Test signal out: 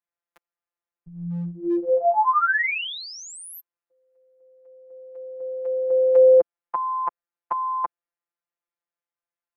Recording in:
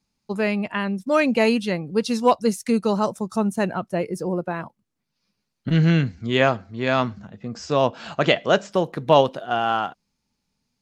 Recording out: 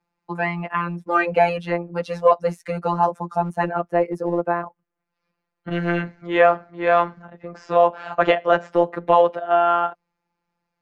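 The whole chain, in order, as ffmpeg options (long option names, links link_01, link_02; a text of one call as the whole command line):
ffmpeg -i in.wav -filter_complex "[0:a]acrossover=split=370 2100:gain=0.224 1 0.0794[link_01][link_02][link_03];[link_01][link_02][link_03]amix=inputs=3:normalize=0,afftfilt=real='hypot(re,im)*cos(PI*b)':imag='0':win_size=1024:overlap=0.75,acrossover=split=320|990[link_04][link_05][link_06];[link_04]asoftclip=type=hard:threshold=-35.5dB[link_07];[link_07][link_05][link_06]amix=inputs=3:normalize=0,alimiter=level_in=13dB:limit=-1dB:release=50:level=0:latency=1,volume=-3.5dB" out.wav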